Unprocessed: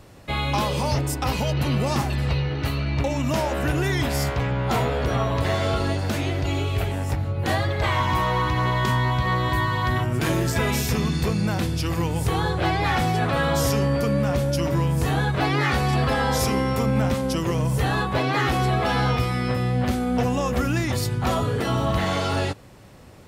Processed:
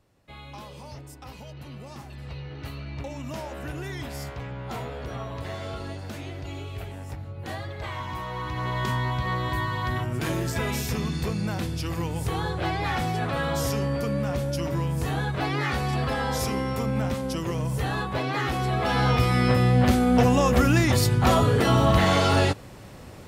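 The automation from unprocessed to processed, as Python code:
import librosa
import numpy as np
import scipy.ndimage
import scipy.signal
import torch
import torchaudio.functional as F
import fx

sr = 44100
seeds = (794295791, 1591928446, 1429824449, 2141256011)

y = fx.gain(x, sr, db=fx.line((1.97, -18.5), (2.59, -11.5), (8.28, -11.5), (8.81, -5.0), (18.62, -5.0), (19.4, 3.5)))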